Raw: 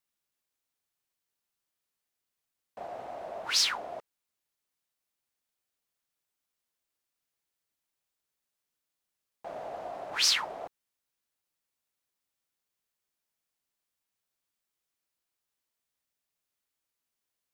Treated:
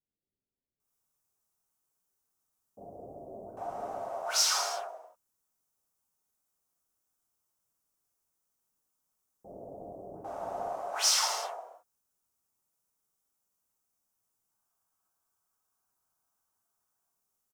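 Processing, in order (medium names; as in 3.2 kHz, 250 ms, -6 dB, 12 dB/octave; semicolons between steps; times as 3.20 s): high-order bell 2.8 kHz -11.5 dB; time-frequency box 13.69–16.32 s, 620–1700 Hz +6 dB; bands offset in time lows, highs 800 ms, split 500 Hz; gated-style reverb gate 370 ms falling, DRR -4 dB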